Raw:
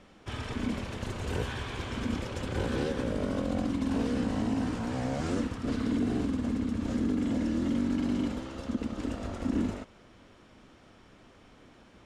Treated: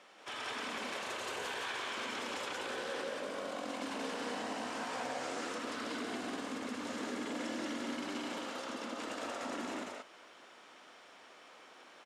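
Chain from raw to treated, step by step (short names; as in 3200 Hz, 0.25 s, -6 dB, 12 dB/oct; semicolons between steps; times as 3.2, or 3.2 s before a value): HPF 630 Hz 12 dB/oct; limiter -34.5 dBFS, peak gain reduction 8.5 dB; on a send: loudspeakers at several distances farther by 33 m -9 dB, 62 m -1 dB; on the sum: gain +1.5 dB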